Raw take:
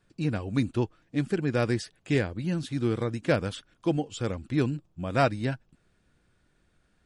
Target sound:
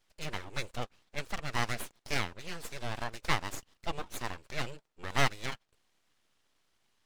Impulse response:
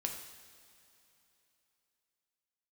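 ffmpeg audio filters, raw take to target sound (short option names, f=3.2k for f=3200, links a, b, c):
-af "highpass=f=1.4k:p=1,highshelf=f=7.3k:g=-8.5,aeval=exprs='abs(val(0))':c=same,volume=5dB"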